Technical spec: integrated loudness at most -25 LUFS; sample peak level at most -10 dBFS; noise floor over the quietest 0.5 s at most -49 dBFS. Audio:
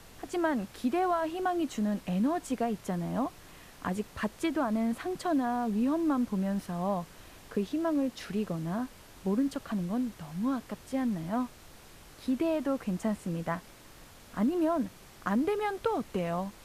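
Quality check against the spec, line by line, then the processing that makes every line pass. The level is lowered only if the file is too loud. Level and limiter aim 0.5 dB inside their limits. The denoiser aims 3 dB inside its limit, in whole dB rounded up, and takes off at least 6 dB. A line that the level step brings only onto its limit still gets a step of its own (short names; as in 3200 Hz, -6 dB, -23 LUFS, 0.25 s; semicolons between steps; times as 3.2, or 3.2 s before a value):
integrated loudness -32.0 LUFS: OK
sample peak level -16.0 dBFS: OK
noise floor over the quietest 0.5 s -52 dBFS: OK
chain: none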